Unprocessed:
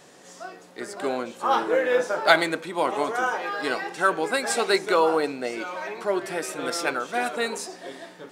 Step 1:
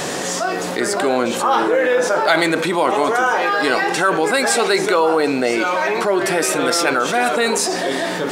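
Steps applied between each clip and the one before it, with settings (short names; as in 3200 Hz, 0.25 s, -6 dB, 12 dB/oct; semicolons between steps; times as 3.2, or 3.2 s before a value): fast leveller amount 70%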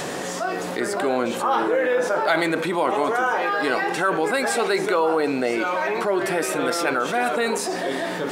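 dynamic EQ 6100 Hz, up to -6 dB, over -34 dBFS, Q 0.7; gain -4.5 dB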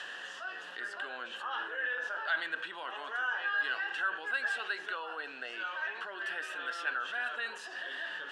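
double band-pass 2200 Hz, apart 0.77 oct; gain -2.5 dB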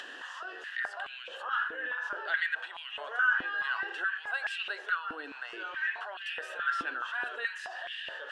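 upward compressor, threshold -41 dBFS; stepped high-pass 4.7 Hz 280–2600 Hz; gain -2.5 dB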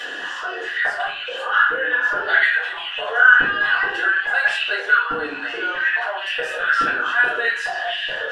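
reverb RT60 0.45 s, pre-delay 3 ms, DRR -12 dB; gain +2.5 dB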